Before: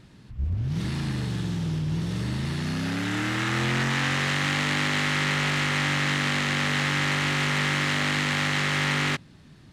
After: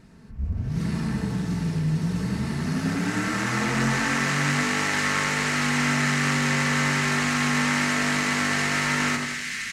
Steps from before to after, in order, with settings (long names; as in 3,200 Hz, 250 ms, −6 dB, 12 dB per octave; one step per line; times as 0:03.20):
parametric band 3,400 Hz −9.5 dB 0.64 octaves
comb filter 4.5 ms, depth 45%
on a send: echo with a time of its own for lows and highs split 1,700 Hz, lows 90 ms, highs 697 ms, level −3.5 dB
on the sum: dynamic equaliser 7,000 Hz, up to +4 dB, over −42 dBFS, Q 0.75